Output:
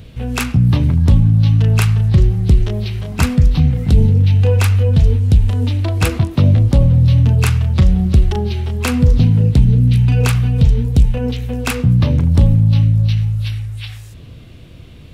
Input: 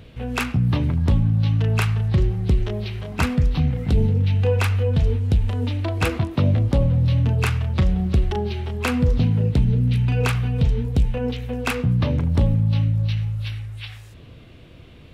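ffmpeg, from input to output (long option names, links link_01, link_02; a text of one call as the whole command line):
ffmpeg -i in.wav -af "aeval=exprs='0.376*(cos(1*acos(clip(val(0)/0.376,-1,1)))-cos(1*PI/2))+0.00841*(cos(4*acos(clip(val(0)/0.376,-1,1)))-cos(4*PI/2))':channel_layout=same,bass=frequency=250:gain=6,treble=frequency=4000:gain=8,volume=2dB" out.wav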